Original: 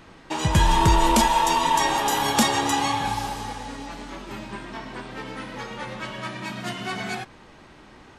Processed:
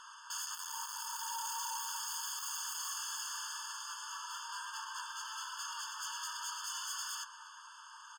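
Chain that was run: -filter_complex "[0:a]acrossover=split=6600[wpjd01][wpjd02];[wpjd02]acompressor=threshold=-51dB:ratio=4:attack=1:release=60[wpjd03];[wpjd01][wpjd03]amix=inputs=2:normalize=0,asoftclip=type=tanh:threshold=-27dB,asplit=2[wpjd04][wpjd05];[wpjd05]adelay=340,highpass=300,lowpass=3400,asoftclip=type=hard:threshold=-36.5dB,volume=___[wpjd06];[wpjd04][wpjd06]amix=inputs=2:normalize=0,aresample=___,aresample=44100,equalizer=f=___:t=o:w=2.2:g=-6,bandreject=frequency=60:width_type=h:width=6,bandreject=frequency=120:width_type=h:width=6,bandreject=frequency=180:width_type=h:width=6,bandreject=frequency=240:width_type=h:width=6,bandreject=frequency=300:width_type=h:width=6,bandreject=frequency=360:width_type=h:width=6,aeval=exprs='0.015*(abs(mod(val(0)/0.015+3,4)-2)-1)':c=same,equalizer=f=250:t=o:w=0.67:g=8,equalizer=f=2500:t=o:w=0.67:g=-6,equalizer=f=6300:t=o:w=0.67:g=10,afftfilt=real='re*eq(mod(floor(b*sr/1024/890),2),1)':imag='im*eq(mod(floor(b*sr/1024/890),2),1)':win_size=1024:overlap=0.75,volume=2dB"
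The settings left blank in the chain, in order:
-18dB, 32000, 120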